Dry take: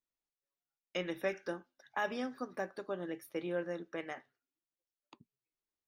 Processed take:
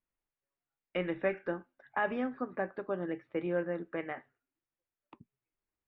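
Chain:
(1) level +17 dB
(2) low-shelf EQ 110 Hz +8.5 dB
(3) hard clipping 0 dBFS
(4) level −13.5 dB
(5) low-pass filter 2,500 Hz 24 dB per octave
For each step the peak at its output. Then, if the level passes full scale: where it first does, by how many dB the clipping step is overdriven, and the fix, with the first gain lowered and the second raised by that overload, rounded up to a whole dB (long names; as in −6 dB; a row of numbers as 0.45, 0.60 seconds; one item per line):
−4.5, −4.0, −4.0, −17.5, −17.5 dBFS
no step passes full scale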